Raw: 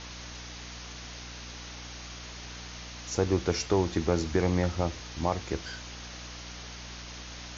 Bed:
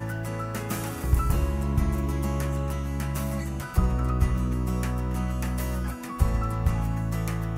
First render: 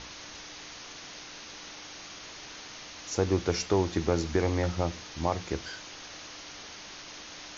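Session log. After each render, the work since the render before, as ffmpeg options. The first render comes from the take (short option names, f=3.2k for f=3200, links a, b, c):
-af "bandreject=f=60:t=h:w=6,bandreject=f=120:t=h:w=6,bandreject=f=180:t=h:w=6,bandreject=f=240:t=h:w=6"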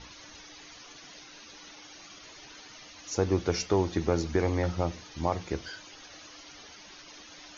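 -af "afftdn=nr=11:nf=-45"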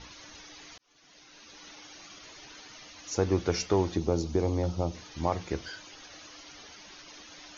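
-filter_complex "[0:a]asettb=1/sr,asplit=3[a][b][c];[a]atrim=end=3.964[d];[b]atrim=start=3.96:end=4.95,asetpts=PTS-STARTPTS,afade=t=in:d=0.004:c=qsin,afade=t=out:st=0.986:d=0.004:c=qsin,equalizer=f=1.8k:w=1.3:g=-14[e];[c]atrim=start=4.946[f];[d][e]acrossfade=d=0.004:c1=hsin:c2=qsin[g];[g][f]acrossfade=d=0.004:c1=qsin:c2=hsin,asplit=2[h][i];[h]atrim=end=0.78,asetpts=PTS-STARTPTS,afade=t=out:st=0.776:d=0.004:c=hsin[j];[i]atrim=start=0.78,asetpts=PTS-STARTPTS,afade=t=in:d=0.92[k];[j][k]concat=n=2:v=0:a=1"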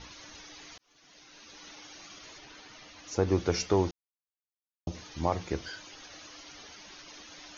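-filter_complex "[0:a]asettb=1/sr,asplit=3[a][b][c];[a]atrim=end=2.384[d];[b]atrim=start=2.38:end=3.28,asetpts=PTS-STARTPTS,afade=t=in:d=0.004:c=qsin,afade=t=out:st=0.896:d=0.004:c=qsin,lowpass=f=4k:p=1[e];[c]atrim=start=3.276[f];[d][e]acrossfade=d=0.004:c1=hsin:c2=qsin[g];[g][f]acrossfade=d=0.004:c1=qsin:c2=hsin,asplit=3[h][i][j];[h]atrim=end=3.91,asetpts=PTS-STARTPTS,afade=t=out:st=3.906:d=0.004:c=hsin[k];[i]atrim=start=3.91:end=4.87,asetpts=PTS-STARTPTS,volume=0[l];[j]atrim=start=4.87,asetpts=PTS-STARTPTS,afade=t=in:d=0.004:c=hsin[m];[k][l][m]concat=n=3:v=0:a=1"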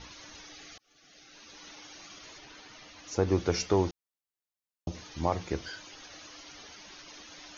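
-filter_complex "[0:a]asettb=1/sr,asplit=3[a][b][c];[a]atrim=end=0.534[d];[b]atrim=start=0.53:end=1.35,asetpts=PTS-STARTPTS,afade=t=in:d=0.004:c=qsin,afade=t=out:st=0.816:d=0.004:c=qsin,asuperstop=centerf=970:order=12:qfactor=4.5[e];[c]atrim=start=1.346[f];[d][e]acrossfade=d=0.004:c1=hsin:c2=qsin[g];[g][f]acrossfade=d=0.004:c1=qsin:c2=hsin"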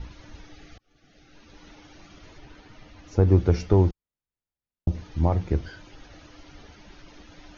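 -af "aemphasis=mode=reproduction:type=riaa,bandreject=f=1.1k:w=20"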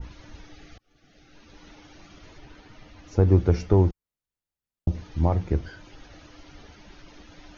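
-af "adynamicequalizer=threshold=0.00282:dfrequency=4000:dqfactor=0.94:tfrequency=4000:tqfactor=0.94:attack=5:release=100:ratio=0.375:range=2.5:mode=cutabove:tftype=bell"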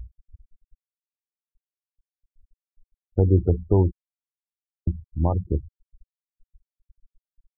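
-af "afftfilt=real='re*gte(hypot(re,im),0.0794)':imag='im*gte(hypot(re,im),0.0794)':win_size=1024:overlap=0.75"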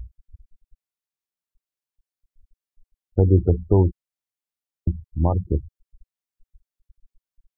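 -af "volume=2dB"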